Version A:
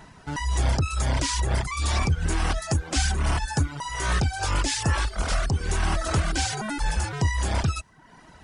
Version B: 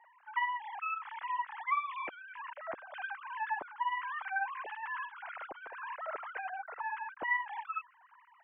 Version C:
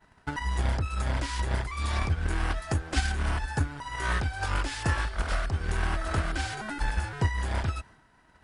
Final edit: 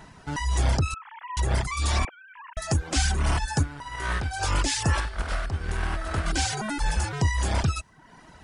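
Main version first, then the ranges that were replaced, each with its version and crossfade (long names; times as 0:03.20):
A
0:00.94–0:01.37: punch in from B
0:02.05–0:02.57: punch in from B
0:03.63–0:04.31: punch in from C
0:05.00–0:06.26: punch in from C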